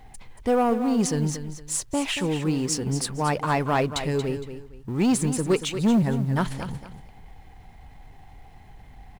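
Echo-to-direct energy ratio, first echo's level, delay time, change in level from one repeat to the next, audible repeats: -10.0 dB, -10.5 dB, 231 ms, -11.0 dB, 2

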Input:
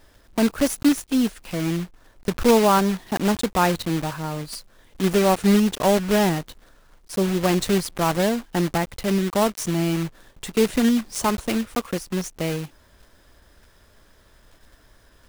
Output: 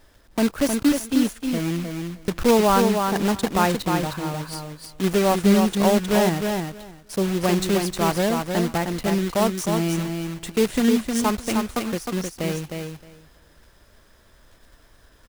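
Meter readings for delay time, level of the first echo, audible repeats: 310 ms, -5.0 dB, 2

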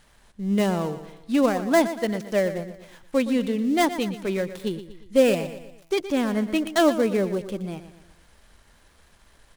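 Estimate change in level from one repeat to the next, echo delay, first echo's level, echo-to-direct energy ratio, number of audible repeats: -7.0 dB, 119 ms, -12.5 dB, -11.5 dB, 4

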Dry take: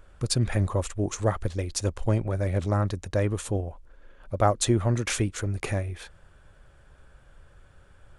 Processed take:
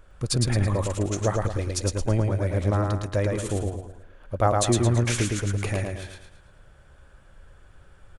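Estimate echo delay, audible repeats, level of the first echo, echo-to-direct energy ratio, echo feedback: 110 ms, 5, -3.0 dB, -2.0 dB, 40%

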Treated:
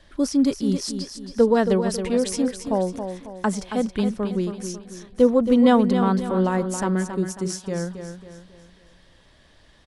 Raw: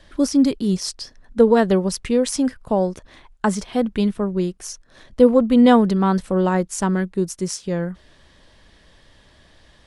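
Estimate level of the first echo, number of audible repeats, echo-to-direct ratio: -8.5 dB, 4, -7.5 dB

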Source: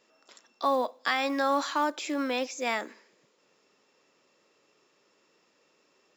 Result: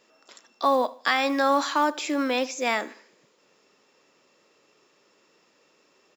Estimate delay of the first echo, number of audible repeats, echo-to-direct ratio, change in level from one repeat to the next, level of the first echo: 77 ms, 2, -20.5 dB, -8.5 dB, -21.0 dB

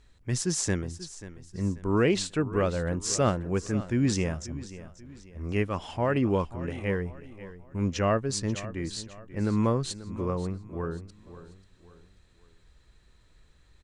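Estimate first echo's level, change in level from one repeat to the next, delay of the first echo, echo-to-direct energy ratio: -15.5 dB, -8.0 dB, 537 ms, -15.0 dB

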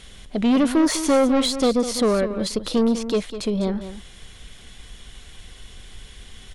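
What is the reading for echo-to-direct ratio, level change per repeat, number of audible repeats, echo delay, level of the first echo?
-11.5 dB, no regular repeats, 1, 201 ms, -11.5 dB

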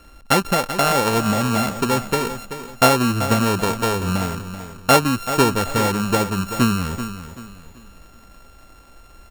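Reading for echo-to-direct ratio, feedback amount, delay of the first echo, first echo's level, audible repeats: -10.5 dB, 34%, 384 ms, -11.0 dB, 3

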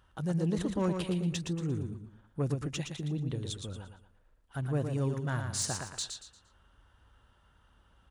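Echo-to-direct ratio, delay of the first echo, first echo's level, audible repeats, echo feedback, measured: -5.5 dB, 116 ms, -6.0 dB, 4, 33%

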